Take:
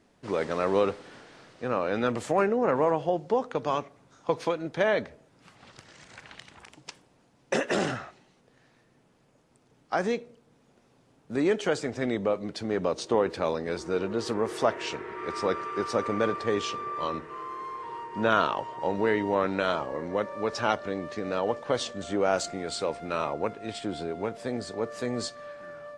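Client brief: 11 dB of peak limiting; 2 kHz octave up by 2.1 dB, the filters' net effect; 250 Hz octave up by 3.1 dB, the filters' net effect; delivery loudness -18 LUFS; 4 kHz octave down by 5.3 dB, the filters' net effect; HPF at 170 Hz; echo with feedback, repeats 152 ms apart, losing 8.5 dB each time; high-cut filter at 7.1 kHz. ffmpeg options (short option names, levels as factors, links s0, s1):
-af "highpass=170,lowpass=7100,equalizer=f=250:t=o:g=5,equalizer=f=2000:t=o:g=4.5,equalizer=f=4000:t=o:g=-8.5,alimiter=limit=0.112:level=0:latency=1,aecho=1:1:152|304|456|608:0.376|0.143|0.0543|0.0206,volume=4.22"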